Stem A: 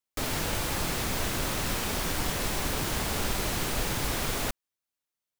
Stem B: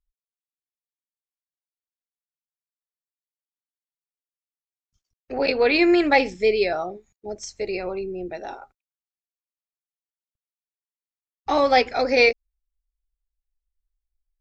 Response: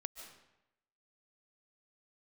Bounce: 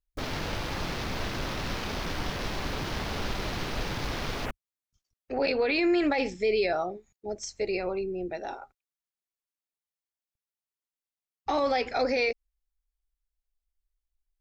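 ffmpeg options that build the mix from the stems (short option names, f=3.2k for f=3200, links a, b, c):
-filter_complex "[0:a]afwtdn=0.0112,volume=-1.5dB[a];[1:a]volume=-2dB[b];[a][b]amix=inputs=2:normalize=0,alimiter=limit=-18dB:level=0:latency=1:release=26"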